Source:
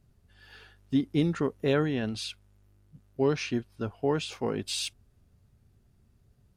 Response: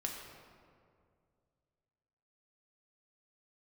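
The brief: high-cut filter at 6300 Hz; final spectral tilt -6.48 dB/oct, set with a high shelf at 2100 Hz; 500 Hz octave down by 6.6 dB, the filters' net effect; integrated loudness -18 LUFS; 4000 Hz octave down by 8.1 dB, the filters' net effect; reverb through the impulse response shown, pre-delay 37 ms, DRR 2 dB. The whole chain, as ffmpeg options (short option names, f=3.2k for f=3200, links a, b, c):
-filter_complex "[0:a]lowpass=6.3k,equalizer=f=500:t=o:g=-8,highshelf=f=2.1k:g=-5,equalizer=f=4k:t=o:g=-4.5,asplit=2[a][b];[1:a]atrim=start_sample=2205,adelay=37[c];[b][c]afir=irnorm=-1:irlink=0,volume=-3dB[d];[a][d]amix=inputs=2:normalize=0,volume=13dB"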